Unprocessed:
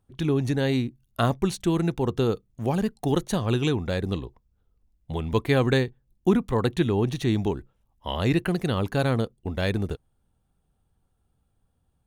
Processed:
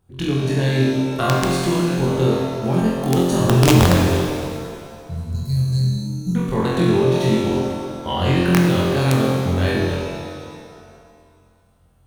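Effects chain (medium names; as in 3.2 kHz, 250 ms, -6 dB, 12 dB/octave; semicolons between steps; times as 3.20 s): single-diode clipper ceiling -9.5 dBFS; in parallel at +3 dB: compression 12:1, threshold -34 dBFS, peak gain reduction 19 dB; 3.40–3.93 s: on the sum: tilt EQ -3 dB/octave; 5.03–6.34 s: time-frequency box 200–3900 Hz -29 dB; on a send: flutter echo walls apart 3.9 m, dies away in 0.88 s; on the sum: integer overflow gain 4 dB; pitch-shifted reverb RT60 2 s, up +7 st, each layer -8 dB, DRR 1.5 dB; trim -2.5 dB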